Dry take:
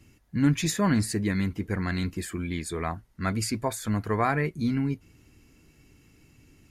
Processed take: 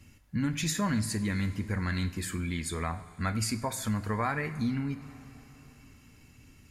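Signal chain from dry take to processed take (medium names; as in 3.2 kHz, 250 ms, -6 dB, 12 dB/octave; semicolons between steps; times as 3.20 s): two-slope reverb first 0.48 s, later 3.9 s, from -18 dB, DRR 9.5 dB; compression 2:1, threshold -30 dBFS, peak gain reduction 7.5 dB; peaking EQ 360 Hz -7.5 dB 0.73 oct; band-stop 700 Hz, Q 12; trim +1.5 dB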